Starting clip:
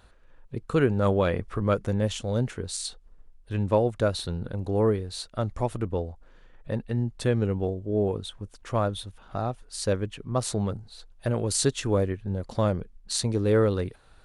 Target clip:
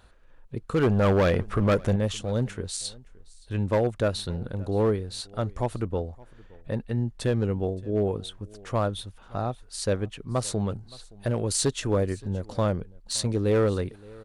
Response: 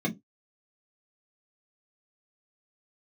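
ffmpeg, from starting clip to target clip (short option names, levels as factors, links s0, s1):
-filter_complex "[0:a]asettb=1/sr,asplit=3[s0][s1][s2];[s0]atrim=end=0.834[s3];[s1]atrim=start=0.83:end=1.96,asetpts=PTS-STARTPTS,afade=t=in:d=0.004:c=qsin,afade=t=out:st=1.126:d=0.004:c=qsin,aeval=exprs='0.335*(cos(1*acos(clip(val(0)/0.335,-1,1)))-cos(1*PI/2))+0.0596*(cos(5*acos(clip(val(0)/0.335,-1,1)))-cos(5*PI/2))':c=same[s4];[s2]atrim=start=1.956[s5];[s3][s4]acrossfade=d=0.004:c1=hsin:c2=qsin[s6];[s6][s5]acrossfade=d=0.004:c1=qsin:c2=hsin,asoftclip=type=hard:threshold=0.141,aecho=1:1:570:0.0668"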